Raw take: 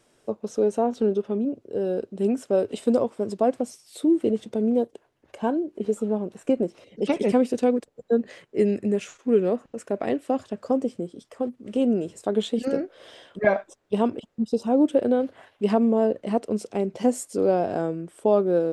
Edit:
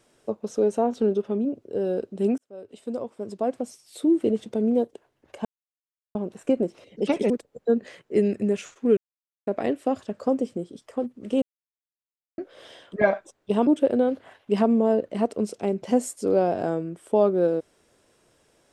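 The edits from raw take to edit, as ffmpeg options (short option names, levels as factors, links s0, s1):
-filter_complex "[0:a]asplit=10[s0][s1][s2][s3][s4][s5][s6][s7][s8][s9];[s0]atrim=end=2.38,asetpts=PTS-STARTPTS,afade=t=out:st=2.376:d=0.004:c=hsin[s10];[s1]atrim=start=2.38:end=5.45,asetpts=PTS-STARTPTS,afade=t=in:d=1.78,afade=t=out:st=3.066:d=0.004:c=hsin[s11];[s2]atrim=start=5.45:end=6.15,asetpts=PTS-STARTPTS,volume=0[s12];[s3]atrim=start=6.15:end=7.302,asetpts=PTS-STARTPTS,afade=t=in:d=0.004:c=hsin[s13];[s4]atrim=start=7.728:end=9.4,asetpts=PTS-STARTPTS,afade=t=out:st=1.668:d=0.004:c=hsin[s14];[s5]atrim=start=9.4:end=9.9,asetpts=PTS-STARTPTS,volume=0[s15];[s6]atrim=start=9.9:end=11.85,asetpts=PTS-STARTPTS,afade=t=in:d=0.004:c=hsin,afade=t=out:st=1.946:d=0.004:c=hsin[s16];[s7]atrim=start=11.85:end=12.81,asetpts=PTS-STARTPTS,volume=0[s17];[s8]atrim=start=12.81:end=14.102,asetpts=PTS-STARTPTS,afade=t=in:d=0.004:c=hsin[s18];[s9]atrim=start=14.788[s19];[s10][s11][s12][s13]concat=n=4:v=0:a=1[s20];[s14][s15][s16][s17][s18]concat=n=5:v=0:a=1[s21];[s20][s21]acrossfade=d=0.004:c1=hsin:c2=hsin[s22];[s22][s19]acrossfade=d=0.004:c1=hsin:c2=hsin"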